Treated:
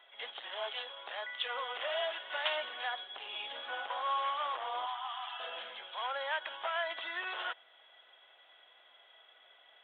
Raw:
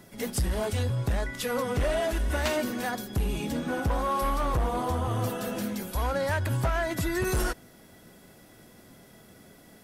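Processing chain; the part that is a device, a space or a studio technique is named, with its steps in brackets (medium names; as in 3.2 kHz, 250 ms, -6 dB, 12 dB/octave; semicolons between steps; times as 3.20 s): musical greeting card (resampled via 8 kHz; high-pass 690 Hz 24 dB/octave; peaking EQ 3.2 kHz +11 dB 0.32 oct); 4.86–5.40 s: Chebyshev high-pass 740 Hz, order 6; trim -4 dB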